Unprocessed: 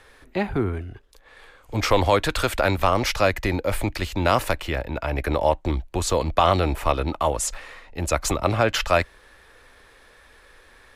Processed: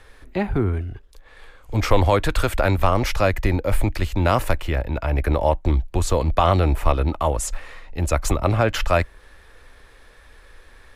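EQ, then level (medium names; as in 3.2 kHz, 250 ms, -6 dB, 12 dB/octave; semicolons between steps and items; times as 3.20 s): bass shelf 68 Hz +7 dB; bass shelf 190 Hz +4 dB; dynamic bell 4.5 kHz, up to -4 dB, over -40 dBFS, Q 0.81; 0.0 dB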